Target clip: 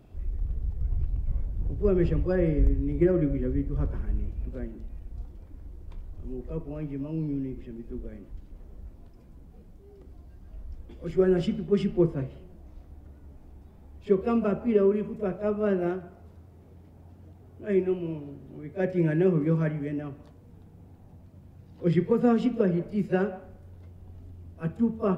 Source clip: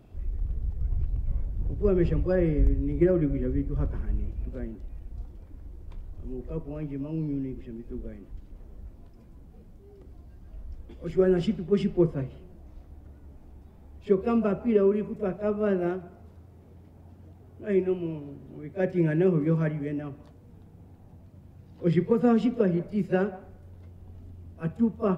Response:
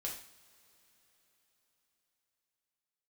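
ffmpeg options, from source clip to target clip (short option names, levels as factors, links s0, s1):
-af "bandreject=f=111.3:t=h:w=4,bandreject=f=222.6:t=h:w=4,bandreject=f=333.9:t=h:w=4,bandreject=f=445.2:t=h:w=4,bandreject=f=556.5:t=h:w=4,bandreject=f=667.8:t=h:w=4,bandreject=f=779.1:t=h:w=4,bandreject=f=890.4:t=h:w=4,bandreject=f=1001.7:t=h:w=4,bandreject=f=1113:t=h:w=4,bandreject=f=1224.3:t=h:w=4,bandreject=f=1335.6:t=h:w=4,bandreject=f=1446.9:t=h:w=4,bandreject=f=1558.2:t=h:w=4,bandreject=f=1669.5:t=h:w=4,bandreject=f=1780.8:t=h:w=4,bandreject=f=1892.1:t=h:w=4,bandreject=f=2003.4:t=h:w=4,bandreject=f=2114.7:t=h:w=4,bandreject=f=2226:t=h:w=4,bandreject=f=2337.3:t=h:w=4,bandreject=f=2448.6:t=h:w=4,bandreject=f=2559.9:t=h:w=4,bandreject=f=2671.2:t=h:w=4,bandreject=f=2782.5:t=h:w=4,bandreject=f=2893.8:t=h:w=4,bandreject=f=3005.1:t=h:w=4,bandreject=f=3116.4:t=h:w=4,bandreject=f=3227.7:t=h:w=4"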